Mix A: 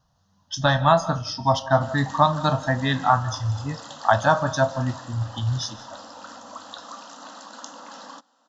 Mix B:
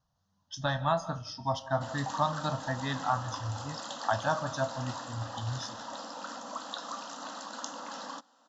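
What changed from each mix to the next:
speech -11.0 dB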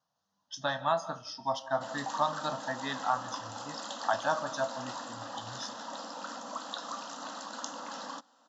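speech: add high-pass 280 Hz 12 dB/octave

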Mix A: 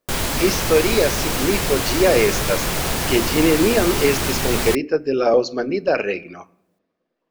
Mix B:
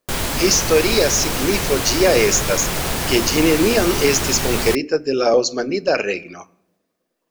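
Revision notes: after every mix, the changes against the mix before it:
speech: remove distance through air 200 m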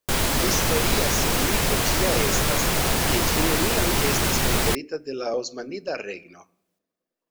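speech -11.5 dB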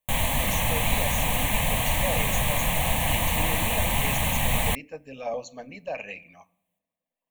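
master: add static phaser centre 1.4 kHz, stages 6

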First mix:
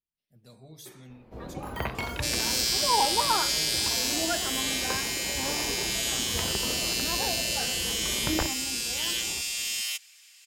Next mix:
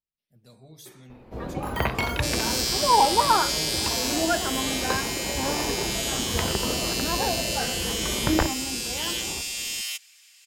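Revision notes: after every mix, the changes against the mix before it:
first sound +6.5 dB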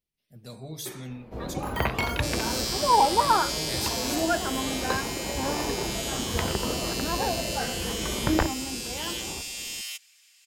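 speech +10.0 dB; second sound -4.5 dB; reverb: off

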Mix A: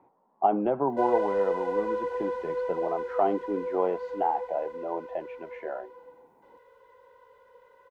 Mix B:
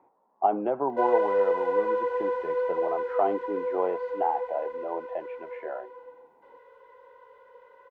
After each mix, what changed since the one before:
background +4.0 dB; master: add tone controls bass -9 dB, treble -11 dB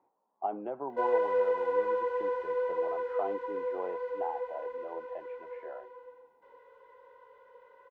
speech -10.0 dB; background -3.5 dB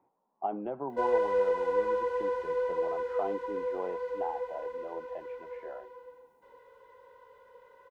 master: add tone controls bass +9 dB, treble +11 dB

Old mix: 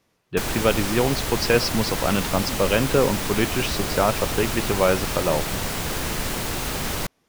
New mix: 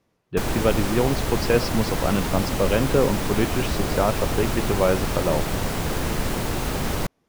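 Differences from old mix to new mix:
speech -3.5 dB; master: add tilt shelf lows +4 dB, about 1.3 kHz

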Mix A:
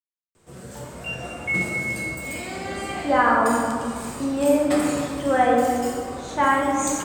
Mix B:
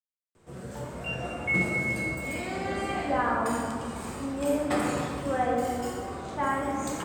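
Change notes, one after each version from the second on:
speech -8.5 dB; master: add treble shelf 3.3 kHz -8.5 dB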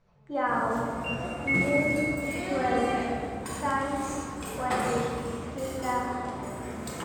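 speech: entry -2.75 s

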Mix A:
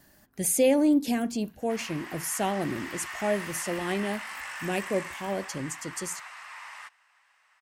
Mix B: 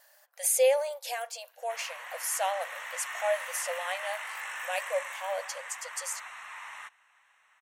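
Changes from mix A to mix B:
speech: add brick-wall FIR high-pass 480 Hz; background: add Butterworth band-stop 4.8 kHz, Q 3.3

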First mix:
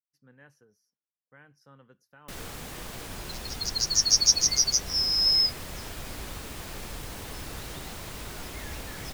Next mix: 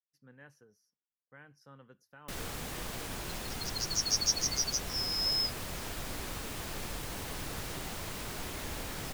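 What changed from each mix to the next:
second sound -9.0 dB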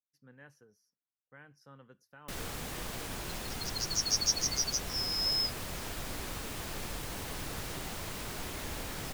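no change

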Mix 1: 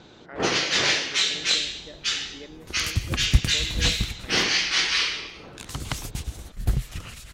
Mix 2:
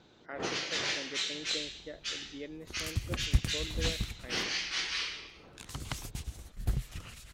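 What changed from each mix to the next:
first sound -11.5 dB; second sound -8.0 dB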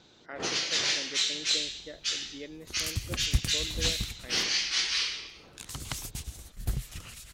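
first sound: add peaking EQ 4.8 kHz +3 dB 1.4 oct; master: add treble shelf 4 kHz +8.5 dB

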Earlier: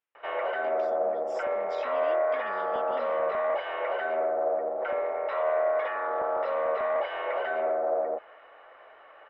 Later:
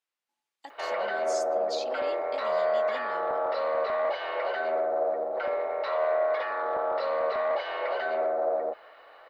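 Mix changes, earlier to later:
background: entry +0.55 s; master: remove Savitzky-Golay filter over 25 samples

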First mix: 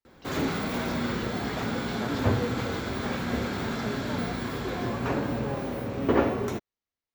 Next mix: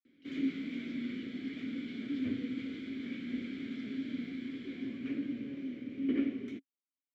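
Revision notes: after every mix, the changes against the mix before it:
master: add vowel filter i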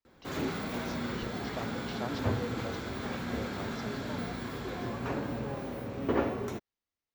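background -6.0 dB; master: remove vowel filter i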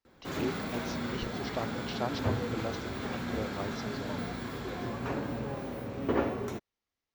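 speech +5.0 dB

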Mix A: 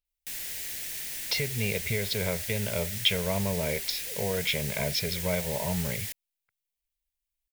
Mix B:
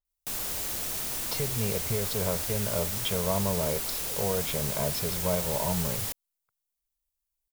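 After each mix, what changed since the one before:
background +11.0 dB; master: add resonant high shelf 1.5 kHz -7.5 dB, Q 3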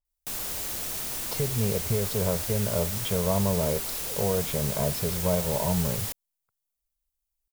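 speech: add tilt shelf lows +4.5 dB, about 1.1 kHz

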